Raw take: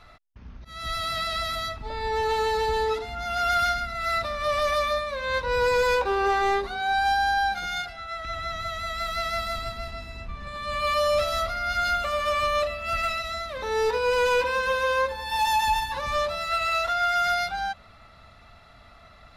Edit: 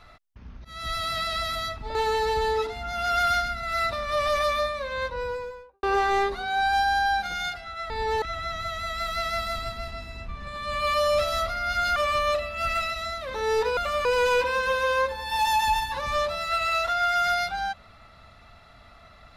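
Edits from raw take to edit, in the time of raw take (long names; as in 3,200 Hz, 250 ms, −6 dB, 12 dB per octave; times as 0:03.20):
0:01.95–0:02.27: move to 0:08.22
0:04.99–0:06.15: fade out and dull
0:11.96–0:12.24: move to 0:14.05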